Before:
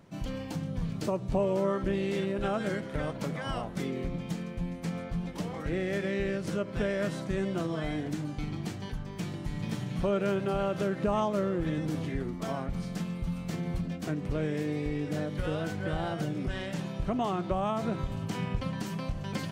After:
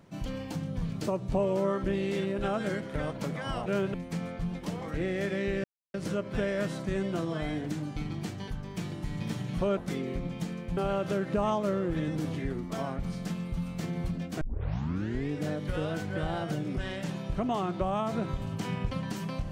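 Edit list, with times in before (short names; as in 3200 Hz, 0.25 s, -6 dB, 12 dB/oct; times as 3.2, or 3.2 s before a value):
3.66–4.66 swap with 10.19–10.47
6.36 insert silence 0.30 s
14.11 tape start 0.88 s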